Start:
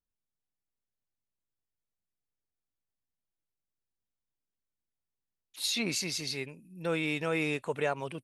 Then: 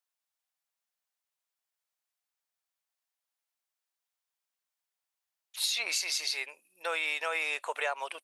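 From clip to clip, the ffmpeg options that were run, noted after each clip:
-af "highpass=f=660:w=0.5412,highpass=f=660:w=1.3066,acompressor=threshold=-34dB:ratio=6,volume=6.5dB"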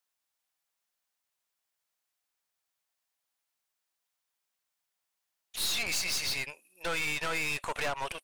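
-af "aeval=exprs='(tanh(63.1*val(0)+0.65)-tanh(0.65))/63.1':c=same,volume=7.5dB"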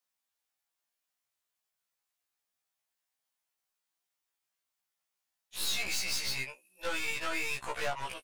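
-af "afftfilt=real='re*1.73*eq(mod(b,3),0)':imag='im*1.73*eq(mod(b,3),0)':win_size=2048:overlap=0.75"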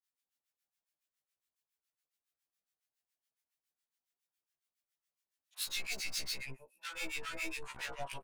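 -filter_complex "[0:a]acrossover=split=1100[a][b];[a]aeval=exprs='val(0)*(1-1/2+1/2*cos(2*PI*7.2*n/s))':c=same[c];[b]aeval=exprs='val(0)*(1-1/2-1/2*cos(2*PI*7.2*n/s))':c=same[d];[c][d]amix=inputs=2:normalize=0,acrossover=split=930[e][f];[e]adelay=120[g];[g][f]amix=inputs=2:normalize=0,volume=-1dB"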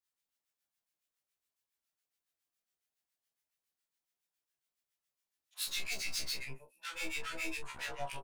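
-filter_complex "[0:a]asplit=2[a][b];[b]adelay=28,volume=-7dB[c];[a][c]amix=inputs=2:normalize=0"

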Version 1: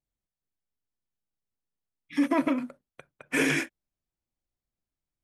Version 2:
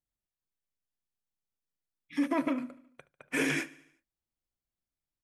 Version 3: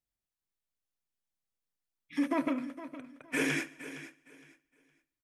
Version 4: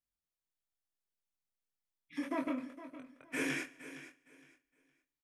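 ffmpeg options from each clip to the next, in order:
-af "aecho=1:1:73|146|219|292|365:0.0891|0.0517|0.03|0.0174|0.0101,volume=-4.5dB"
-af "aecho=1:1:463|926|1389:0.2|0.0459|0.0106,volume=-1dB"
-filter_complex "[0:a]asplit=2[a][b];[b]adelay=23,volume=-4dB[c];[a][c]amix=inputs=2:normalize=0,volume=-6.5dB"

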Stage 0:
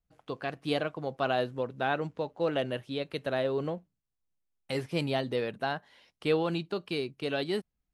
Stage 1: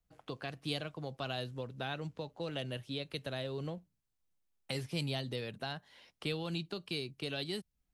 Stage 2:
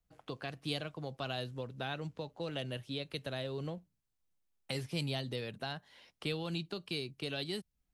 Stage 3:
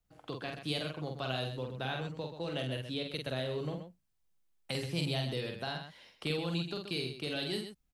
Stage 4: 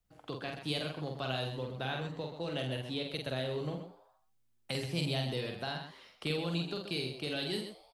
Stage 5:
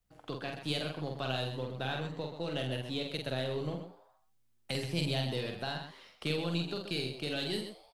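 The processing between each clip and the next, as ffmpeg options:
-filter_complex "[0:a]acrossover=split=150|3000[a][b][c];[b]acompressor=threshold=-45dB:ratio=3[d];[a][d][c]amix=inputs=3:normalize=0,volume=1.5dB"
-af anull
-af "aecho=1:1:46.65|128.3:0.631|0.355,volume=1dB"
-filter_complex "[0:a]asplit=6[a][b][c][d][e][f];[b]adelay=83,afreqshift=120,volume=-18dB[g];[c]adelay=166,afreqshift=240,volume=-22.7dB[h];[d]adelay=249,afreqshift=360,volume=-27.5dB[i];[e]adelay=332,afreqshift=480,volume=-32.2dB[j];[f]adelay=415,afreqshift=600,volume=-36.9dB[k];[a][g][h][i][j][k]amix=inputs=6:normalize=0"
-af "aeval=exprs='if(lt(val(0),0),0.708*val(0),val(0))':c=same,volume=2dB"

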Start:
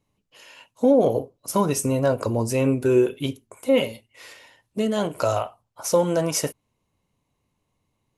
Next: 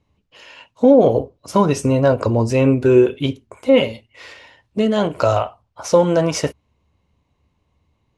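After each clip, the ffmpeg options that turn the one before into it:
-af "lowpass=4.7k,equalizer=f=72:t=o:w=0.44:g=13.5,volume=6dB"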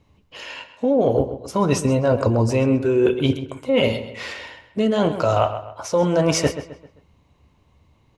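-filter_complex "[0:a]areverse,acompressor=threshold=-22dB:ratio=10,areverse,asplit=2[a][b];[b]adelay=131,lowpass=f=3.8k:p=1,volume=-11dB,asplit=2[c][d];[d]adelay=131,lowpass=f=3.8k:p=1,volume=0.4,asplit=2[e][f];[f]adelay=131,lowpass=f=3.8k:p=1,volume=0.4,asplit=2[g][h];[h]adelay=131,lowpass=f=3.8k:p=1,volume=0.4[i];[a][c][e][g][i]amix=inputs=5:normalize=0,volume=7dB"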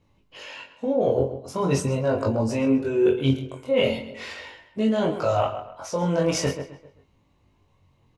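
-filter_complex "[0:a]flanger=delay=18.5:depth=5.5:speed=0.41,asplit=2[a][b];[b]adelay=22,volume=-5.5dB[c];[a][c]amix=inputs=2:normalize=0,volume=-2.5dB"

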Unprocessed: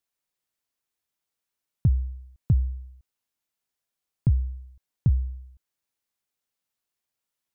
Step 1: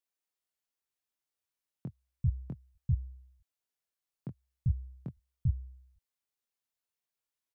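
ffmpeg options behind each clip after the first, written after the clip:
-filter_complex "[0:a]asplit=2[a][b];[b]adelay=23,volume=-6dB[c];[a][c]amix=inputs=2:normalize=0,acrossover=split=180[d][e];[d]adelay=390[f];[f][e]amix=inputs=2:normalize=0,volume=-7.5dB"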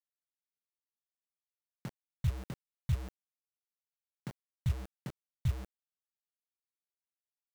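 -af "acompressor=mode=upward:threshold=-46dB:ratio=2.5,acrusher=bits=6:mix=0:aa=0.000001,volume=-2dB"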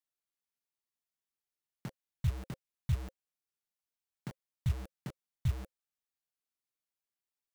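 -af "bandreject=f=530:w=12"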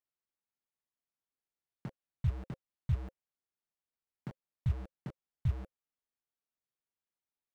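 -af "lowpass=f=1.5k:p=1"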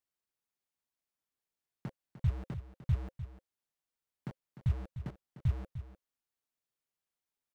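-af "aecho=1:1:301:0.251,volume=1dB"

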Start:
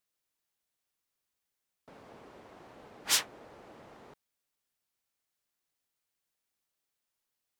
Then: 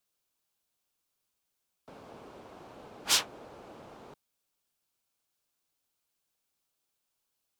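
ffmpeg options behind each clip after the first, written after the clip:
-filter_complex "[0:a]equalizer=f=1.9k:w=4:g=-7,acrossover=split=300|590|6000[a][b][c][d];[d]alimiter=limit=-24dB:level=0:latency=1:release=148[e];[a][b][c][e]amix=inputs=4:normalize=0,volume=3.5dB"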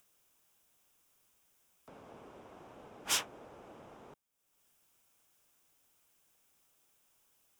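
-af "equalizer=f=4.3k:t=o:w=0.3:g=-11,acompressor=mode=upward:threshold=-54dB:ratio=2.5,volume=-4dB"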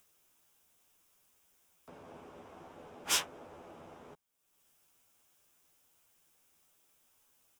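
-filter_complex "[0:a]asplit=2[a][b];[b]adelay=12,volume=-4dB[c];[a][c]amix=inputs=2:normalize=0"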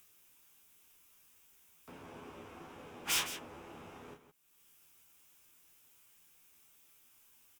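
-af "equalizer=f=630:t=o:w=0.67:g=-7,equalizer=f=2.5k:t=o:w=0.67:g=4,equalizer=f=16k:t=o:w=0.67:g=5,volume=31.5dB,asoftclip=hard,volume=-31.5dB,aecho=1:1:29.15|163.3:0.501|0.282,volume=2dB"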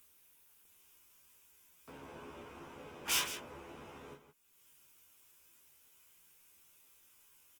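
-filter_complex "[0:a]asplit=2[a][b];[b]adelay=14,volume=-5dB[c];[a][c]amix=inputs=2:normalize=0,volume=-1dB" -ar 48000 -c:a libopus -b:a 24k

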